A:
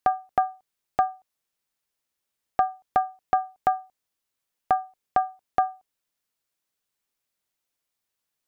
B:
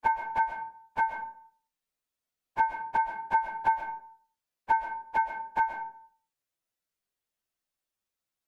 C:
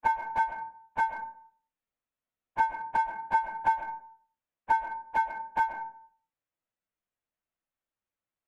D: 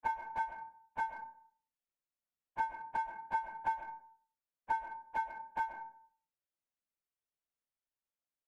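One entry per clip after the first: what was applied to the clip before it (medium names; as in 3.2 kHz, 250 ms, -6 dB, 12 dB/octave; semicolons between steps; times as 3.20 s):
frequency axis rescaled in octaves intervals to 116%; on a send at -5.5 dB: reverberation RT60 0.50 s, pre-delay 90 ms
local Wiener filter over 9 samples; band-stop 400 Hz, Q 12
feedback comb 51 Hz, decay 0.32 s, harmonics odd, mix 50%; trim -4 dB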